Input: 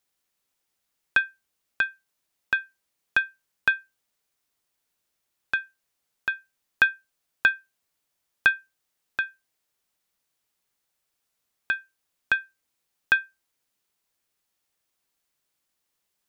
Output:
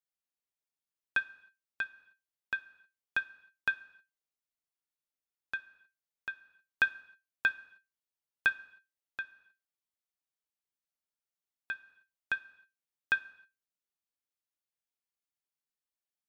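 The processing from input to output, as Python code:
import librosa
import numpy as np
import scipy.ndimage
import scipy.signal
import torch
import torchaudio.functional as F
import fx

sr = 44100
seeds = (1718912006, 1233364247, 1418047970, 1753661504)

y = fx.rev_gated(x, sr, seeds[0], gate_ms=340, shape='falling', drr_db=8.5)
y = fx.upward_expand(y, sr, threshold_db=-37.0, expansion=1.5)
y = y * 10.0 ** (-7.5 / 20.0)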